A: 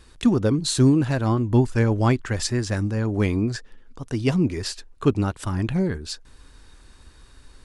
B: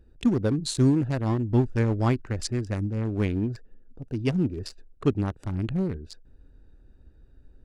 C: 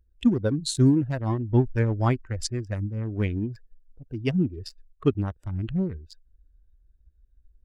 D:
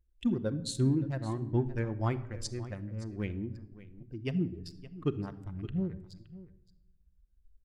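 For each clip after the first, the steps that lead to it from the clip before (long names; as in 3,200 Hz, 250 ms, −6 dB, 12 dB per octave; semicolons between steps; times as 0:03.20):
adaptive Wiener filter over 41 samples; level −3.5 dB
spectral dynamics exaggerated over time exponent 1.5; level +3 dB
single-tap delay 569 ms −17 dB; rectangular room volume 3,200 cubic metres, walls furnished, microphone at 0.88 metres; level −8.5 dB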